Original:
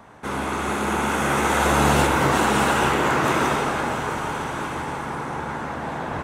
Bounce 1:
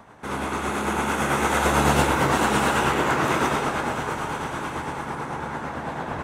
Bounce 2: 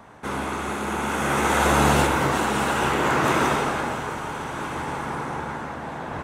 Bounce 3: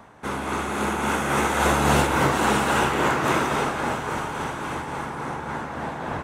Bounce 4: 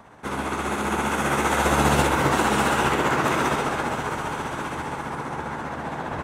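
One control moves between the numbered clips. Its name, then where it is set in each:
tremolo, rate: 9 Hz, 0.59 Hz, 3.6 Hz, 15 Hz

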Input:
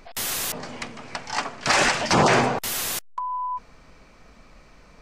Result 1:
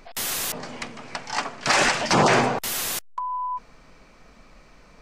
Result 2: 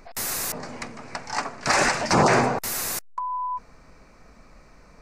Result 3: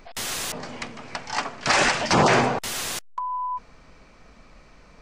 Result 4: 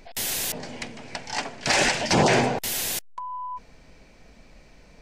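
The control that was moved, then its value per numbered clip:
peaking EQ, frequency: 75 Hz, 3.2 kHz, 13 kHz, 1.2 kHz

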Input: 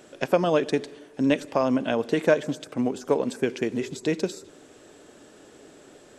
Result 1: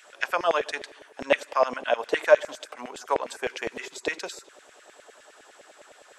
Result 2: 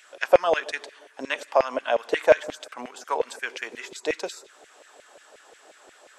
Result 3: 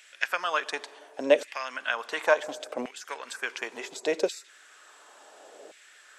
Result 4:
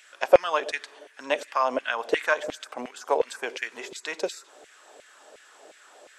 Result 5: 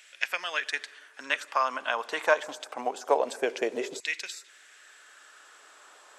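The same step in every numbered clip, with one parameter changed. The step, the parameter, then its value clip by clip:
LFO high-pass, rate: 9.8 Hz, 5.6 Hz, 0.7 Hz, 2.8 Hz, 0.25 Hz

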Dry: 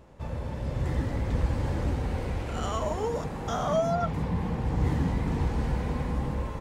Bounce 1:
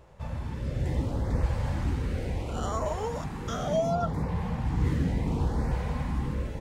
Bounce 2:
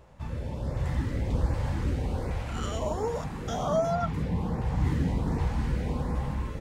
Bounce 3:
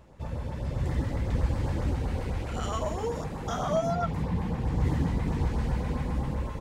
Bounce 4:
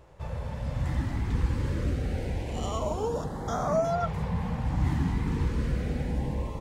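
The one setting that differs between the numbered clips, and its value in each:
LFO notch, rate: 0.7 Hz, 1.3 Hz, 7.7 Hz, 0.26 Hz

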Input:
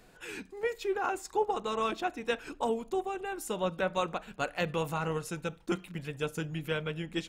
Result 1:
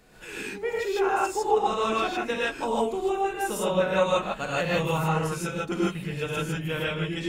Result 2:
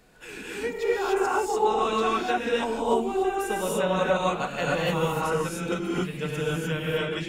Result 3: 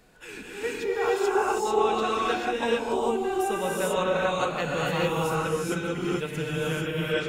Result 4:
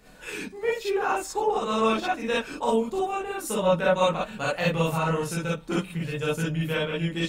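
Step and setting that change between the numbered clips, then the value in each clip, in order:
gated-style reverb, gate: 180 ms, 320 ms, 470 ms, 80 ms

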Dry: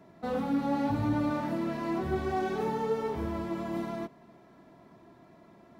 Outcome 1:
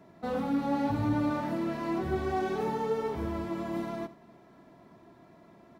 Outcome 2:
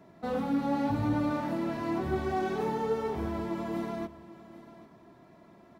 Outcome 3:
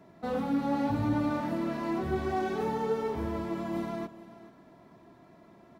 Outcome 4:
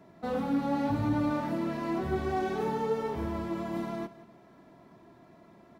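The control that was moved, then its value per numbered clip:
delay, time: 78 ms, 794 ms, 432 ms, 175 ms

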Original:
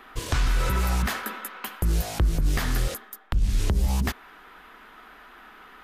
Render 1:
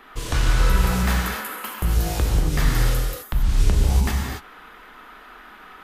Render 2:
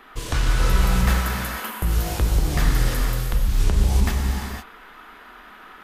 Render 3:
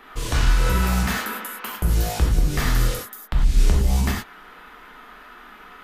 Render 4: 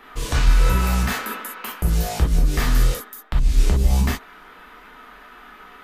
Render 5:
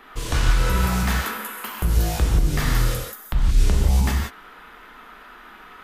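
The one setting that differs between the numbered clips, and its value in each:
gated-style reverb, gate: 300 ms, 530 ms, 130 ms, 80 ms, 200 ms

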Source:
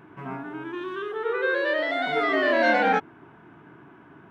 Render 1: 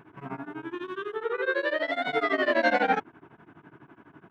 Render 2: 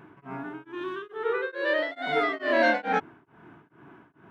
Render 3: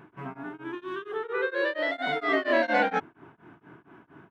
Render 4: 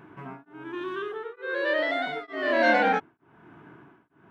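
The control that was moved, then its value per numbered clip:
tremolo of two beating tones, nulls at: 12 Hz, 2.3 Hz, 4.3 Hz, 1.1 Hz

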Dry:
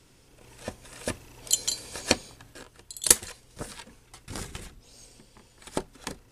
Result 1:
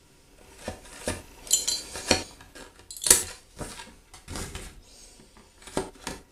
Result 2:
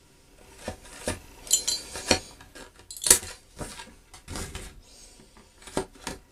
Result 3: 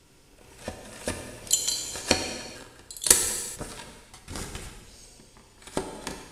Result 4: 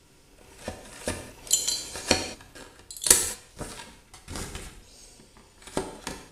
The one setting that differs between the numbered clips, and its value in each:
gated-style reverb, gate: 130 ms, 80 ms, 460 ms, 240 ms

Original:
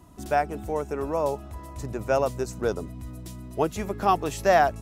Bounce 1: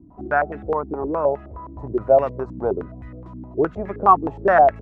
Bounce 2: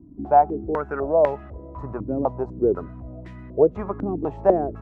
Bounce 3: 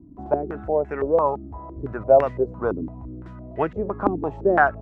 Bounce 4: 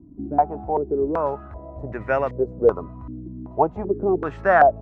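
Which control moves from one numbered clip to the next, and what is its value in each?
step-sequenced low-pass, rate: 9.6 Hz, 4 Hz, 5.9 Hz, 2.6 Hz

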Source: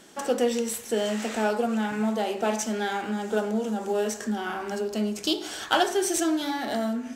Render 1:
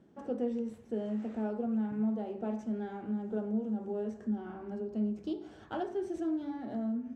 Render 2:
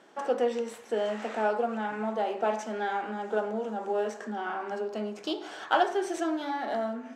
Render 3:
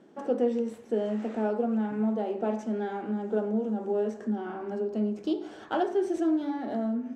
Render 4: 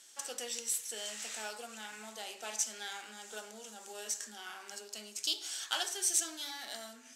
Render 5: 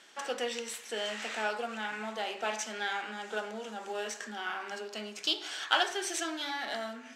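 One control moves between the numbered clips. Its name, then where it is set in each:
band-pass filter, frequency: 100 Hz, 830 Hz, 290 Hz, 7.8 kHz, 2.4 kHz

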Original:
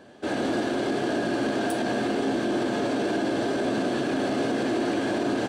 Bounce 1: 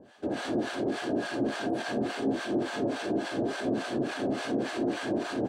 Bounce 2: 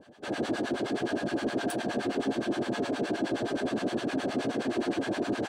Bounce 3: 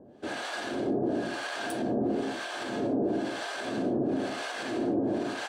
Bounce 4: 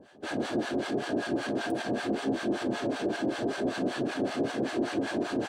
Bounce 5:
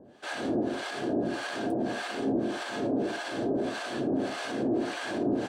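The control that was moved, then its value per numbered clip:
harmonic tremolo, rate: 3.5 Hz, 9.6 Hz, 1 Hz, 5.2 Hz, 1.7 Hz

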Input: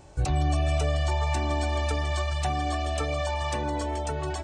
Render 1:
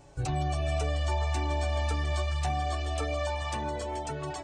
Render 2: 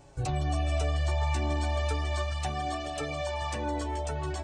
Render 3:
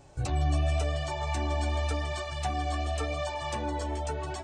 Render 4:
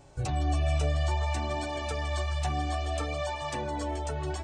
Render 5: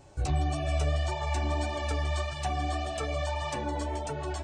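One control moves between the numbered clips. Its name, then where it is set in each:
flange, rate: 0.23 Hz, 0.34 Hz, 0.89 Hz, 0.58 Hz, 1.7 Hz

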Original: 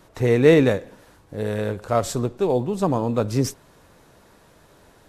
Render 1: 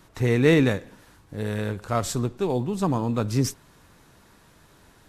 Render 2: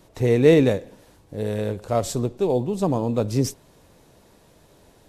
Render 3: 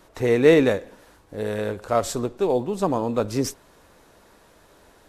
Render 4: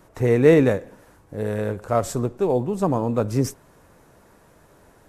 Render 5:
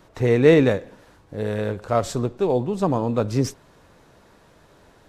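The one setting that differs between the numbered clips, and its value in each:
peaking EQ, frequency: 550 Hz, 1.4 kHz, 130 Hz, 3.8 kHz, 12 kHz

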